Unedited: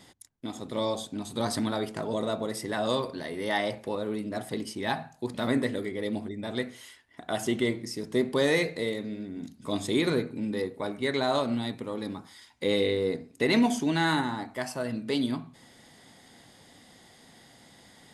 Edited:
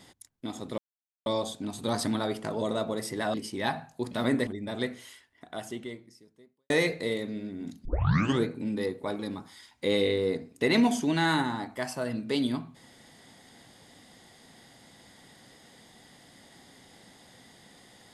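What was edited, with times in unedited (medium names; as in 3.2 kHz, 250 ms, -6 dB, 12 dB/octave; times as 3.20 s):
0.78 s: insert silence 0.48 s
2.86–4.57 s: delete
5.70–6.23 s: delete
6.77–8.46 s: fade out quadratic
9.61 s: tape start 0.60 s
10.95–11.98 s: delete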